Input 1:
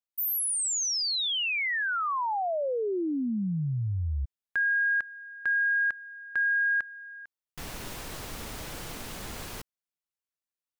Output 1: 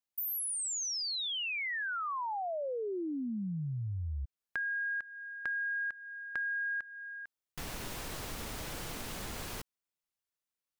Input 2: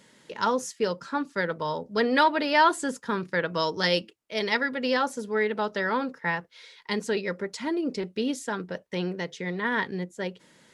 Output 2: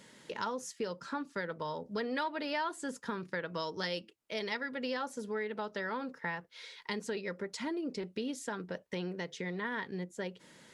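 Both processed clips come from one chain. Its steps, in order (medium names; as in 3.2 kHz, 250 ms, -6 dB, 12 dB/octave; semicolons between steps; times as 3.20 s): compression 3:1, threshold -37 dBFS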